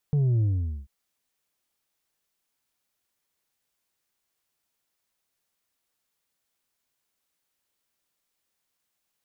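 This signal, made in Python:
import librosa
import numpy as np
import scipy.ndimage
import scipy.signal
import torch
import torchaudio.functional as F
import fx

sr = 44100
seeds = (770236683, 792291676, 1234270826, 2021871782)

y = fx.sub_drop(sr, level_db=-20, start_hz=150.0, length_s=0.74, drive_db=4, fade_s=0.46, end_hz=65.0)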